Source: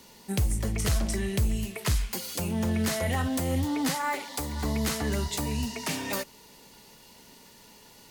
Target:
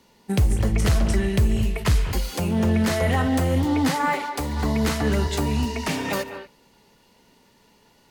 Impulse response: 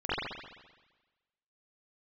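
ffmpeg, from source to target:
-filter_complex "[0:a]agate=range=-10dB:threshold=-39dB:ratio=16:detection=peak,highshelf=f=4.5k:g=-10,asplit=2[a][b];[1:a]atrim=start_sample=2205,atrim=end_sample=4410,adelay=146[c];[b][c]afir=irnorm=-1:irlink=0,volume=-18dB[d];[a][d]amix=inputs=2:normalize=0,volume=7dB"

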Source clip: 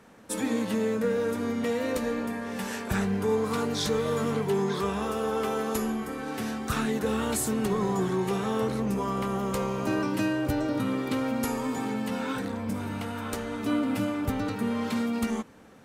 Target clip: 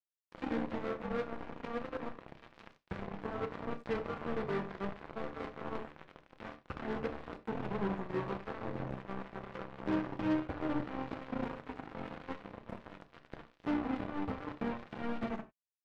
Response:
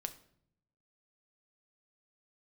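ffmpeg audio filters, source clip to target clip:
-filter_complex "[0:a]aemphasis=mode=reproduction:type=50fm,acrossover=split=3800[a][b];[b]acompressor=threshold=-56dB:ratio=4:attack=1:release=60[c];[a][c]amix=inputs=2:normalize=0,bass=f=250:g=-5,treble=f=4k:g=-14,acrossover=split=470[d][e];[e]acompressor=threshold=-41dB:ratio=4[f];[d][f]amix=inputs=2:normalize=0,flanger=delay=7.7:depth=6.3:regen=27:speed=0.79:shape=triangular,acrusher=bits=4:mix=0:aa=0.5[g];[1:a]atrim=start_sample=2205,afade=t=out:st=0.15:d=0.01,atrim=end_sample=7056[h];[g][h]afir=irnorm=-1:irlink=0,volume=-1dB"

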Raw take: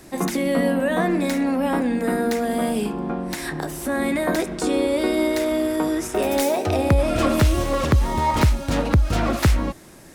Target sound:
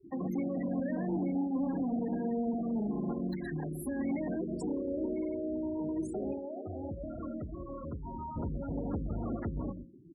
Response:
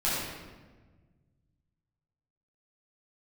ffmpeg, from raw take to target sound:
-filter_complex "[0:a]alimiter=limit=-16dB:level=0:latency=1:release=13,acrossover=split=300[a][b];[b]acompressor=threshold=-37dB:ratio=10[c];[a][c]amix=inputs=2:normalize=0,asoftclip=type=tanh:threshold=-22dB,asplit=3[d][e][f];[d]afade=t=out:st=6.32:d=0.02[g];[e]lowshelf=f=470:g=-9,afade=t=in:st=6.32:d=0.02,afade=t=out:st=8.35:d=0.02[h];[f]afade=t=in:st=8.35:d=0.02[i];[g][h][i]amix=inputs=3:normalize=0,asoftclip=type=hard:threshold=-27dB,highshelf=f=10k:g=8.5,aecho=1:1:124:0.335,afftfilt=real='re*gte(hypot(re,im),0.0282)':imag='im*gte(hypot(re,im),0.0282)':win_size=1024:overlap=0.75,highpass=f=100:p=1,bandreject=f=60:t=h:w=6,bandreject=f=120:t=h:w=6,bandreject=f=180:t=h:w=6,bandreject=f=240:t=h:w=6,bandreject=f=300:t=h:w=6,bandreject=f=360:t=h:w=6,bandreject=f=420:t=h:w=6,bandreject=f=480:t=h:w=6,bandreject=f=540:t=h:w=6,volume=-1.5dB"

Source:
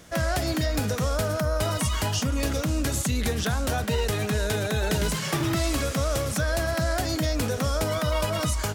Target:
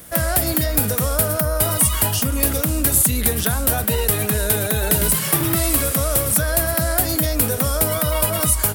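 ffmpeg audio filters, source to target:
-af "aexciter=amount=9:drive=3:freq=8.9k,volume=4dB"

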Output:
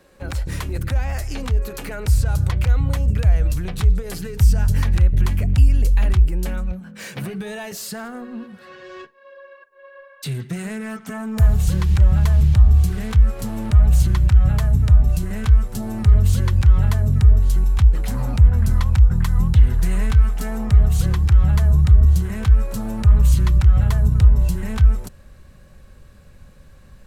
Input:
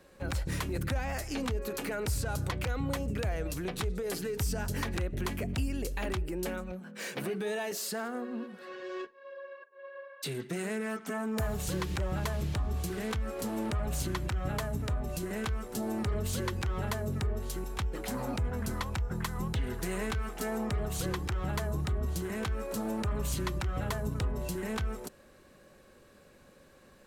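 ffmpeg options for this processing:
-af "asubboost=boost=9.5:cutoff=110,volume=4.5dB"

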